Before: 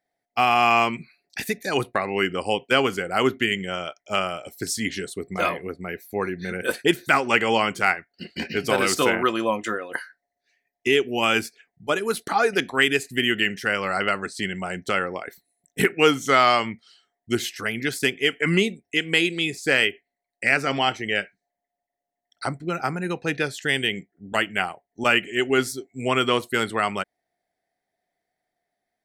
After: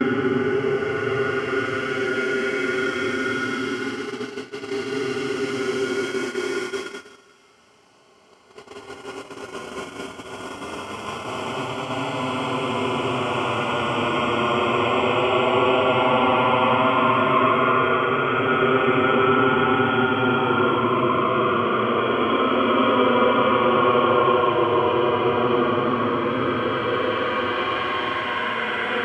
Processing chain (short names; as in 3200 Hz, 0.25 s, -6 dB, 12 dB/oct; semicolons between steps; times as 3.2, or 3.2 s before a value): spectral swells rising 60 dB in 0.82 s; on a send: thinning echo 0.11 s, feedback 47%, high-pass 230 Hz, level -5.5 dB; on the sum: treble ducked by the level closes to 1600 Hz, closed at -14 dBFS; Paulstretch 34×, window 0.05 s, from 25.61; gate -27 dBFS, range -22 dB